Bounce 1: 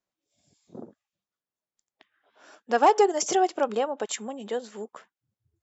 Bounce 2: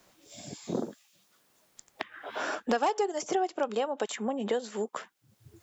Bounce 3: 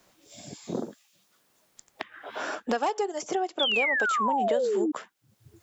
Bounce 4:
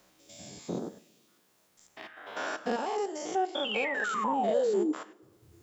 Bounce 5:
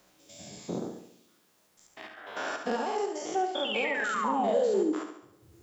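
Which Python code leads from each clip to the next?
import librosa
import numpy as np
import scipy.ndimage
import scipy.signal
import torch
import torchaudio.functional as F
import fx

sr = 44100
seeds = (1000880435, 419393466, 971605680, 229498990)

y1 = fx.band_squash(x, sr, depth_pct=100)
y1 = F.gain(torch.from_numpy(y1), -3.5).numpy()
y2 = fx.spec_paint(y1, sr, seeds[0], shape='fall', start_s=3.59, length_s=1.33, low_hz=290.0, high_hz=3600.0, level_db=-26.0)
y3 = fx.spec_steps(y2, sr, hold_ms=100)
y3 = fx.rev_double_slope(y3, sr, seeds[1], early_s=0.3, late_s=1.7, knee_db=-18, drr_db=12.0)
y4 = fx.echo_feedback(y3, sr, ms=70, feedback_pct=50, wet_db=-7.5)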